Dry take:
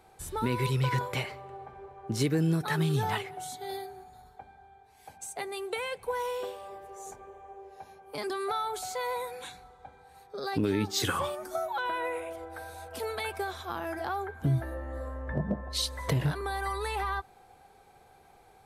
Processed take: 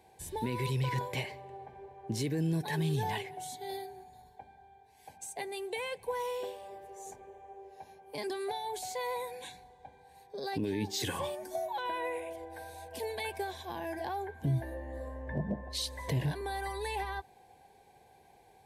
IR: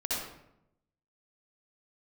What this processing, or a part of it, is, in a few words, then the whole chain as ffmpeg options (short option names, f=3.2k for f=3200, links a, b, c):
PA system with an anti-feedback notch: -af "highpass=f=120:p=1,asuperstop=centerf=1300:order=4:qfactor=2.6,alimiter=limit=-23dB:level=0:latency=1:release=15,lowshelf=f=160:g=4.5,volume=-2.5dB"